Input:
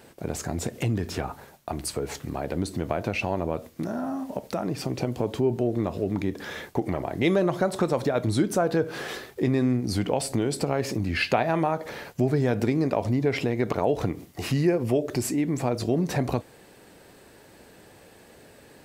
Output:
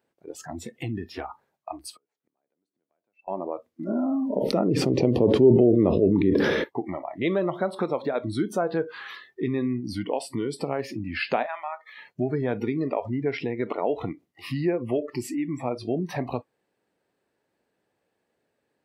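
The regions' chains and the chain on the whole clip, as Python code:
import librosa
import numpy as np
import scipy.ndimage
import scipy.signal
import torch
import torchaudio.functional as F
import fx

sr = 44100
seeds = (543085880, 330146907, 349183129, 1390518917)

y = fx.chain(x, sr, fx.highpass(hz=230.0, slope=12),
    fx.gate_flip(shuts_db=-28.0, range_db=-26), at=(1.9, 3.28))
y = fx.chain(y, sr, fx.lowpass(hz=12000.0, slope=12),
    fx.low_shelf_res(hz=610.0, db=7.5, q=1.5),
    fx.sustainer(db_per_s=22.0), at=(3.87, 6.64))
y = fx.chain(y, sr, fx.highpass(hz=1000.0, slope=12),
    fx.notch(hz=2700.0, q=18.0), at=(11.46, 11.98))
y = fx.noise_reduce_blind(y, sr, reduce_db=22)
y = fx.highpass(y, sr, hz=190.0, slope=6)
y = fx.high_shelf(y, sr, hz=4400.0, db=-9.0)
y = y * 10.0 ** (-1.0 / 20.0)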